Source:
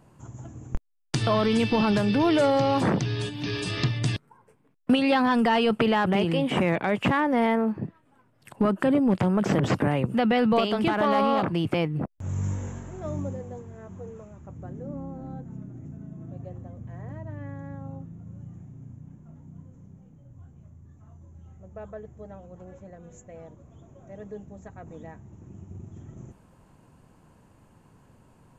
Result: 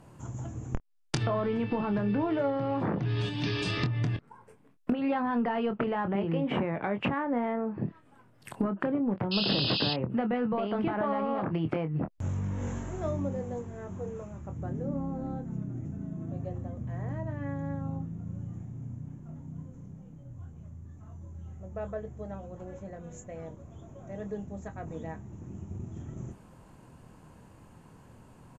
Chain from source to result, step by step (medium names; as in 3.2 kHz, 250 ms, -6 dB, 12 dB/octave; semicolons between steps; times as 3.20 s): low-pass that closes with the level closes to 1.7 kHz, closed at -20.5 dBFS; 3.77–4.97 s: dynamic bell 3.9 kHz, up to -5 dB, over -48 dBFS, Q 0.87; compression 8:1, threshold -29 dBFS, peak gain reduction 12.5 dB; 9.31–9.94 s: painted sound noise 2.5–5.2 kHz -34 dBFS; doubling 25 ms -9 dB; trim +2.5 dB